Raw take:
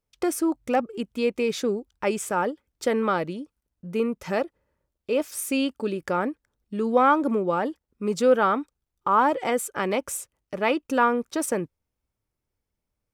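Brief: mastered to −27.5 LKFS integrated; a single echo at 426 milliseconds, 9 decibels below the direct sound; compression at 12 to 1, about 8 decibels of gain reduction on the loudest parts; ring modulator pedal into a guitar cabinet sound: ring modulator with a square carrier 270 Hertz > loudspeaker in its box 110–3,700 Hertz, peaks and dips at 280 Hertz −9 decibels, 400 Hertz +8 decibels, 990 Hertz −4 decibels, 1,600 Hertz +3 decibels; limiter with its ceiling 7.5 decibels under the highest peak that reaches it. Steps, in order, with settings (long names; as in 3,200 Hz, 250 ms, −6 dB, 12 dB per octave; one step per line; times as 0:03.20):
downward compressor 12 to 1, threshold −21 dBFS
brickwall limiter −20 dBFS
single-tap delay 426 ms −9 dB
ring modulator with a square carrier 270 Hz
loudspeaker in its box 110–3,700 Hz, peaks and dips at 280 Hz −9 dB, 400 Hz +8 dB, 990 Hz −4 dB, 1,600 Hz +3 dB
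level +3.5 dB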